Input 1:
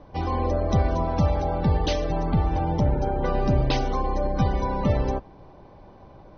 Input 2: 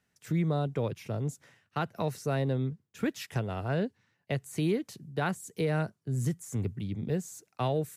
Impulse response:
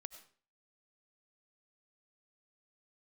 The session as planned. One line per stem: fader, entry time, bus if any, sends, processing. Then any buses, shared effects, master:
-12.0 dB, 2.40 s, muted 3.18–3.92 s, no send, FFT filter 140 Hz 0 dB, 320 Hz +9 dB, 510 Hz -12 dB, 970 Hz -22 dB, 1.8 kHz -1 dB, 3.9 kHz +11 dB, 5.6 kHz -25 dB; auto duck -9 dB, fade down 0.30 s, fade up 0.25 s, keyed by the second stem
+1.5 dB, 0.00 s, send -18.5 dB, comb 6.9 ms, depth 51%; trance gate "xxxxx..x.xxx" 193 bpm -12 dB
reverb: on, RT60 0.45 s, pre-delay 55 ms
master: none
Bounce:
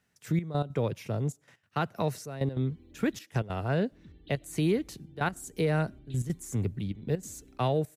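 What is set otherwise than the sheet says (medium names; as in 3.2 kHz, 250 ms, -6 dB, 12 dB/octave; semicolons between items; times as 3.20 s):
stem 1 -12.0 dB -> -23.5 dB; stem 2: missing comb 6.9 ms, depth 51%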